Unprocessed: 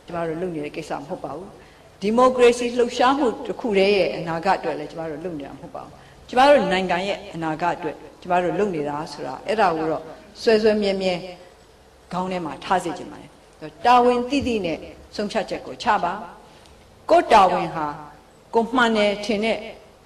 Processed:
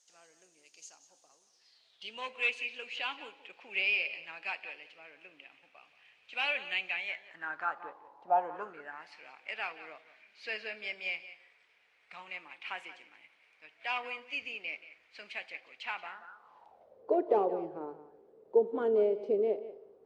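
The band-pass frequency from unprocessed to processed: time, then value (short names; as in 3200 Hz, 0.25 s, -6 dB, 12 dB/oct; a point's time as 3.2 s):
band-pass, Q 6.6
1.41 s 6500 Hz
2.29 s 2500 Hz
6.93 s 2500 Hz
8.32 s 780 Hz
9.14 s 2300 Hz
16.03 s 2300 Hz
17.11 s 420 Hz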